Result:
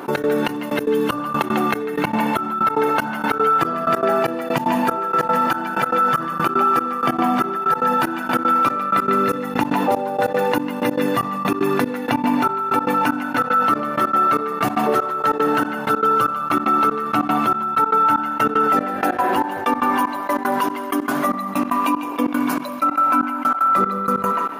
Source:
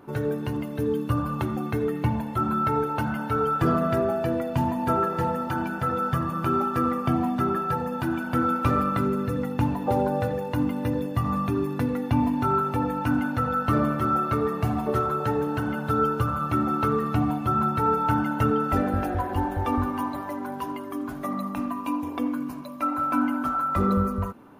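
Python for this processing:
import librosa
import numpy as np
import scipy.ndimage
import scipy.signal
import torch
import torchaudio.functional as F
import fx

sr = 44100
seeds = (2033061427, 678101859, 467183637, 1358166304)

y = scipy.signal.sosfilt(scipy.signal.butter(4, 170.0, 'highpass', fs=sr, output='sos'), x)
y = fx.low_shelf(y, sr, hz=330.0, db=-8.5)
y = fx.echo_banded(y, sr, ms=148, feedback_pct=42, hz=2000.0, wet_db=-3.5)
y = fx.step_gate(y, sr, bpm=190, pattern='.x.xxx..', floor_db=-24.0, edge_ms=4.5)
y = fx.env_flatten(y, sr, amount_pct=70)
y = F.gain(torch.from_numpy(y), 5.5).numpy()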